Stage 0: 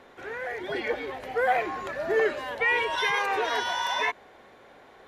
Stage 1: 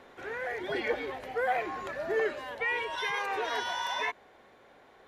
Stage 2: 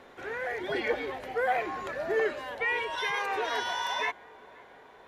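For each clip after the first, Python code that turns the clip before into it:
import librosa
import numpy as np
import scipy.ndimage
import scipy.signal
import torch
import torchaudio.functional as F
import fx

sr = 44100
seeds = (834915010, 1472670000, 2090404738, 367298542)

y1 = fx.rider(x, sr, range_db=3, speed_s=0.5)
y1 = y1 * librosa.db_to_amplitude(-4.5)
y2 = fx.echo_wet_lowpass(y1, sr, ms=522, feedback_pct=68, hz=2000.0, wet_db=-23)
y2 = y2 * librosa.db_to_amplitude(1.5)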